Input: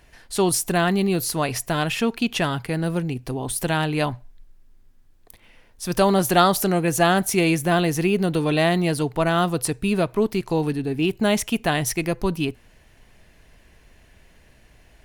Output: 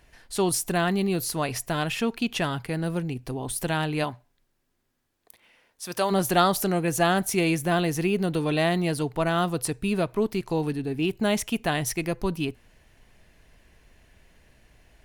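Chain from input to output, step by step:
0:04.03–0:06.10: high-pass filter 210 Hz → 580 Hz 6 dB per octave
level −4 dB

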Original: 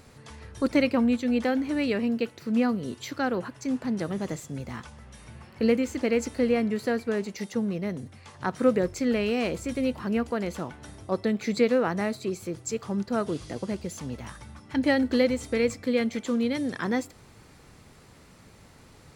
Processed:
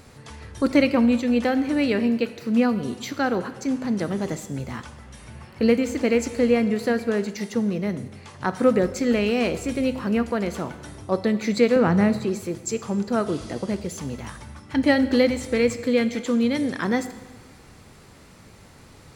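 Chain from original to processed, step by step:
0:11.76–0:12.25: bass and treble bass +11 dB, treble −5 dB
dense smooth reverb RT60 1.3 s, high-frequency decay 1×, DRR 11.5 dB
level +4 dB

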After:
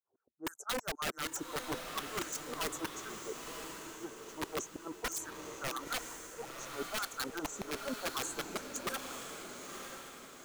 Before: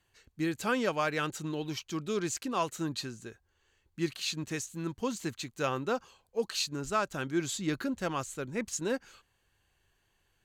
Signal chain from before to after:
auto-filter high-pass saw down 6.3 Hz 300–3,400 Hz
Chebyshev band-stop filter 1,400–6,000 Hz, order 4
low-pass that shuts in the quiet parts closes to 320 Hz, open at −30 dBFS
high-shelf EQ 4,600 Hz +3 dB
reversed playback
downward compressor 12 to 1, threshold −39 dBFS, peak gain reduction 17 dB
reversed playback
wrap-around overflow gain 36 dB
reverb reduction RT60 0.51 s
on a send: feedback delay with all-pass diffusion 966 ms, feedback 45%, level −5.5 dB
on the sum: level +6.5 dB

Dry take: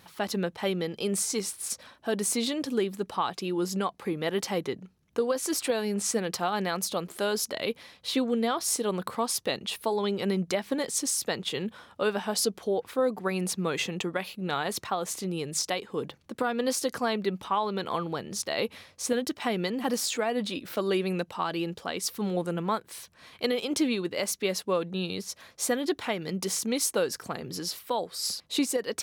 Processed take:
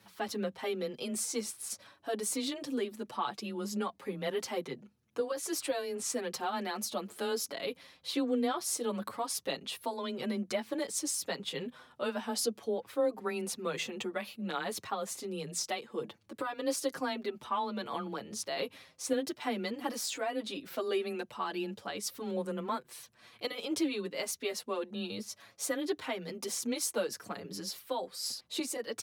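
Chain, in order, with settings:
frequency shifter +19 Hz
barber-pole flanger 6.7 ms −0.55 Hz
level −3 dB

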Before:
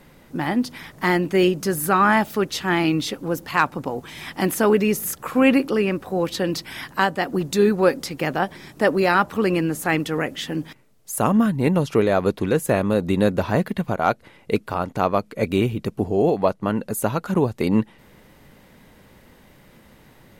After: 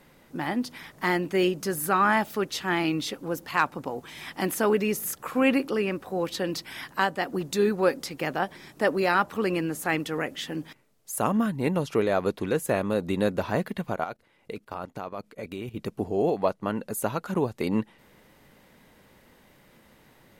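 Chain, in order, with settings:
low-shelf EQ 200 Hz −6 dB
0:14.04–0:15.76: output level in coarse steps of 15 dB
level −4.5 dB

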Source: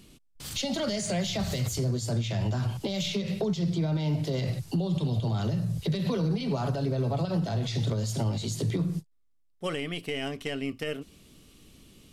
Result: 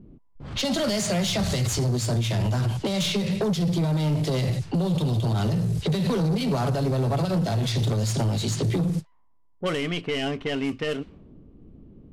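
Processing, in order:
variable-slope delta modulation 64 kbit/s
low-pass that shuts in the quiet parts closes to 370 Hz, open at −26 dBFS
soft clipping −27 dBFS, distortion −14 dB
level +8 dB

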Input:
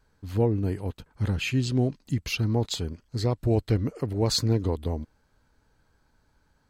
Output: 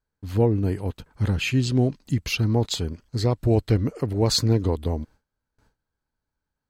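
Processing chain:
noise gate with hold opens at −53 dBFS
level +3.5 dB

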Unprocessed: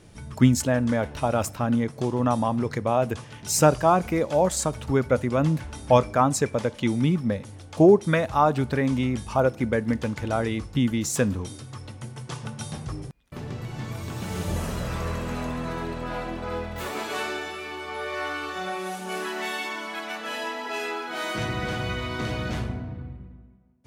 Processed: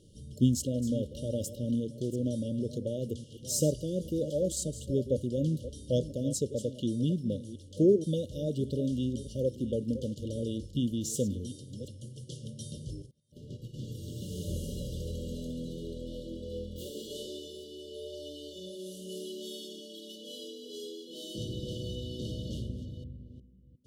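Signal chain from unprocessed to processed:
delay that plays each chunk backwards 360 ms, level −13 dB
linear-phase brick-wall band-stop 610–2,800 Hz
0:13.02–0:13.74: expander for the loud parts 2.5 to 1, over −46 dBFS
level −7 dB

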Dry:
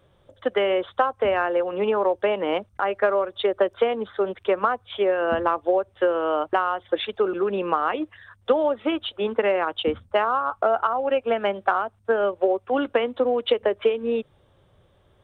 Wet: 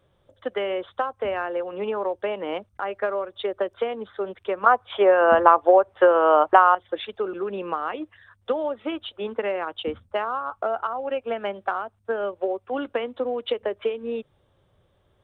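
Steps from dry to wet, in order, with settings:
0:04.66–0:06.75: parametric band 940 Hz +14 dB 2.7 octaves
level −5 dB

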